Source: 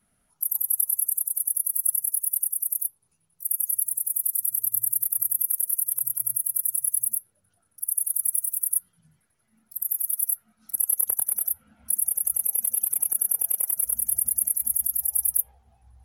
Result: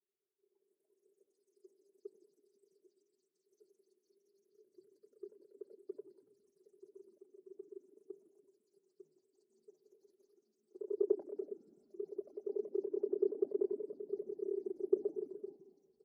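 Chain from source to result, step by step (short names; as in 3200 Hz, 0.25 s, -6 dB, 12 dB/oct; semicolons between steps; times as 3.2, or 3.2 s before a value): echoes that change speed 0.107 s, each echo -5 st, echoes 3, each echo -6 dB; AGC; Butterworth band-pass 390 Hz, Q 5.2; comb 5 ms; frequency-shifting echo 0.166 s, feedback 52%, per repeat -53 Hz, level -18.5 dB; three-band expander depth 70%; gain +13 dB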